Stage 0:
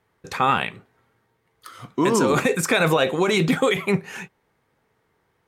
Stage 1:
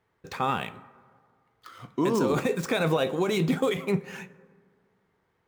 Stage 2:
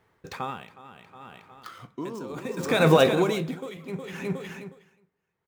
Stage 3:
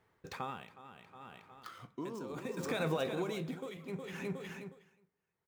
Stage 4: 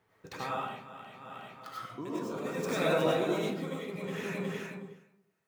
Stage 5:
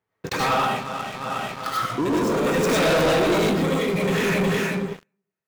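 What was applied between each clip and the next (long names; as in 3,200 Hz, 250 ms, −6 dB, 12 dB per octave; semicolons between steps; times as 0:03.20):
running median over 5 samples; dynamic equaliser 1,900 Hz, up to −6 dB, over −35 dBFS, Q 0.71; dense smooth reverb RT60 1.8 s, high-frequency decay 0.4×, pre-delay 0 ms, DRR 16.5 dB; level −4.5 dB
on a send: repeating echo 364 ms, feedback 28%, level −9.5 dB; on the sum: tremolo with a sine in dB 0.67 Hz, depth 20 dB; level +7.5 dB
downward compressor 2.5 to 1, threshold −29 dBFS, peak gain reduction 11.5 dB; level −6.5 dB
high-pass filter 75 Hz; comb and all-pass reverb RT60 0.53 s, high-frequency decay 0.45×, pre-delay 55 ms, DRR −6 dB
leveller curve on the samples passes 5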